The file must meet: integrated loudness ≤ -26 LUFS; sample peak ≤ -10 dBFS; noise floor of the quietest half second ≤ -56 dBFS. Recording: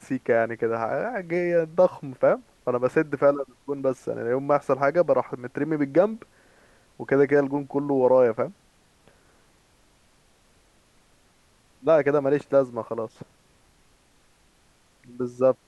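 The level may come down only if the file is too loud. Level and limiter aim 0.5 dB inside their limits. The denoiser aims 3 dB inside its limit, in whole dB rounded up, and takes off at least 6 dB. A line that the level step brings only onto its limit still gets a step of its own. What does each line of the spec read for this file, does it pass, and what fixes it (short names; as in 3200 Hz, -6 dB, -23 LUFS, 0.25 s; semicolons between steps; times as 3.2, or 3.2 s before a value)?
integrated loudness -24.0 LUFS: fail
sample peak -7.0 dBFS: fail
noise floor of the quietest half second -61 dBFS: OK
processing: gain -2.5 dB; limiter -10.5 dBFS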